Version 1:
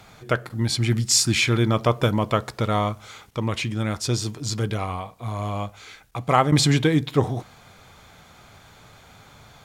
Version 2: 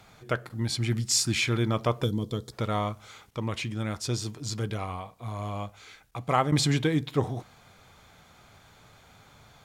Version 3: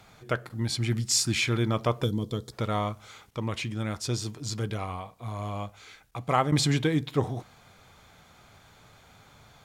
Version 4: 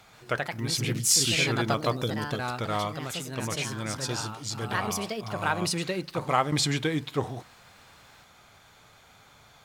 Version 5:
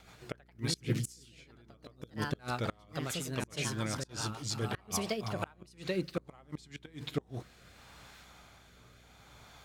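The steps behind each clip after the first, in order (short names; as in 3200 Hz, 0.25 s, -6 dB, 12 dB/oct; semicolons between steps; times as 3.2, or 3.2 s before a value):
spectral gain 2.04–2.53, 510–3100 Hz -16 dB; gain -6 dB
nothing audible
low shelf 440 Hz -6.5 dB; echoes that change speed 0.132 s, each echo +3 st, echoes 2; gain +1.5 dB
flipped gate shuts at -17 dBFS, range -31 dB; buzz 60 Hz, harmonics 7, -62 dBFS -6 dB/oct; rotary speaker horn 7 Hz, later 0.7 Hz, at 5.06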